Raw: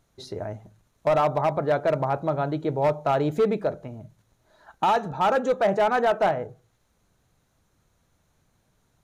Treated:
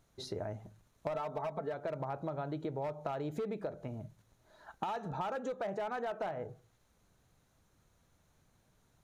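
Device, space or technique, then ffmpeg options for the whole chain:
serial compression, leveller first: -filter_complex "[0:a]asettb=1/sr,asplit=3[link_01][link_02][link_03];[link_01]atrim=end=1.144[link_04];[link_02]atrim=start=1.14:end=1.74,asetpts=PTS-STARTPTS,afade=type=in:duration=0.004:curve=qsin,afade=type=out:start_time=0.596:duration=0.004:curve=qsin,aecho=1:1:4.5:0.99,atrim=end_sample=26460[link_05];[link_03]atrim=start=1.736[link_06];[link_04][link_05]acrossfade=duration=0.004:curve1=hsin:curve2=qsin[link_07];[link_07][link_06]acrossfade=duration=0.004:curve1=qsin:curve2=hsin,acompressor=threshold=-24dB:ratio=2.5,acompressor=threshold=-32dB:ratio=6,volume=-3dB"

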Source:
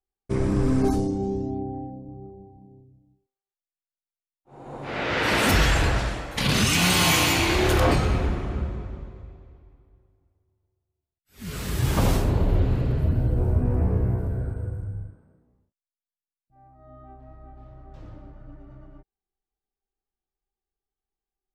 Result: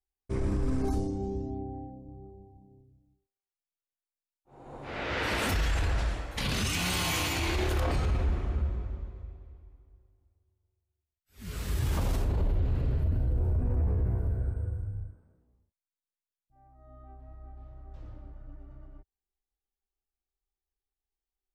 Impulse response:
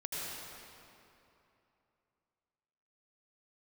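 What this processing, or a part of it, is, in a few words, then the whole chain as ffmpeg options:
car stereo with a boomy subwoofer: -af "lowshelf=frequency=100:width_type=q:width=1.5:gain=6,alimiter=limit=-14dB:level=0:latency=1:release=21,volume=-7dB"

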